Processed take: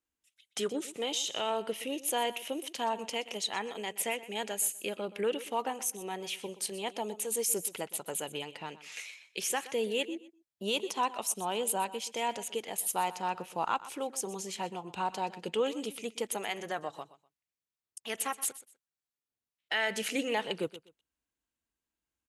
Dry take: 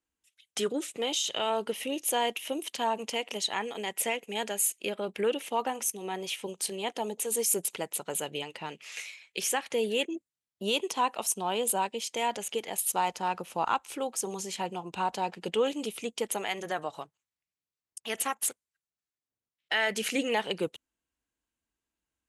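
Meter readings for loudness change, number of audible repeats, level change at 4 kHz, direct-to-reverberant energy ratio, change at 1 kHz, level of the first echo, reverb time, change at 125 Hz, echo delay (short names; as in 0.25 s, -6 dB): -3.0 dB, 2, -3.0 dB, none, -3.0 dB, -16.5 dB, none, -3.0 dB, 0.124 s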